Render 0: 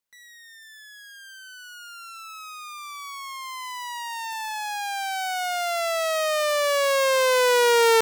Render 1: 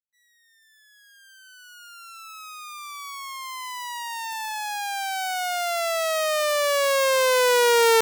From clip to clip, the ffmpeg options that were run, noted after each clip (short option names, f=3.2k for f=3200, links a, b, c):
-af "agate=range=-33dB:threshold=-38dB:ratio=3:detection=peak,highshelf=f=8.3k:g=4"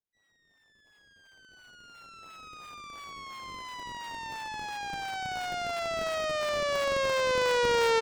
-filter_complex "[0:a]acrossover=split=910|6900[a][b][c];[c]acrusher=samples=32:mix=1:aa=0.000001:lfo=1:lforange=51.2:lforate=2.9[d];[a][b][d]amix=inputs=3:normalize=0,asplit=2[e][f];[f]adelay=758,volume=-17dB,highshelf=f=4k:g=-17.1[g];[e][g]amix=inputs=2:normalize=0,volume=-7dB"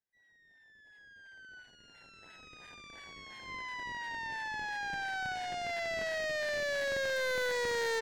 -af "superequalizer=10b=0.316:11b=2.51,adynamicsmooth=sensitivity=2:basefreq=7.6k,asoftclip=type=tanh:threshold=-28dB,volume=-2dB"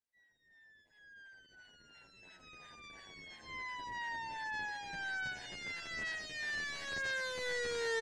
-filter_complex "[0:a]lowpass=f=10k:w=0.5412,lowpass=f=10k:w=1.3066,asplit=2[a][b];[b]adelay=9.2,afreqshift=-1.2[c];[a][c]amix=inputs=2:normalize=1"